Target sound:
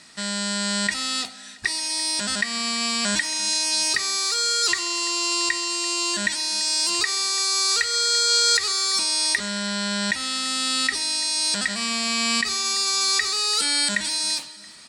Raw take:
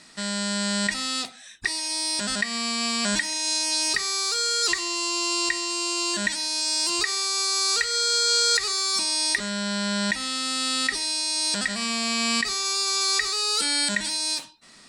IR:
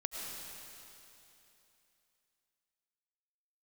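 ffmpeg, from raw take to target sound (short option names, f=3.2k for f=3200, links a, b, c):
-filter_complex "[0:a]highpass=47,equalizer=f=360:w=0.53:g=-3.5,aecho=1:1:338|676|1014|1352:0.075|0.042|0.0235|0.0132,asplit=2[a][b];[1:a]atrim=start_sample=2205,asetrate=52920,aresample=44100[c];[b][c]afir=irnorm=-1:irlink=0,volume=-18.5dB[d];[a][d]amix=inputs=2:normalize=0,volume=1.5dB"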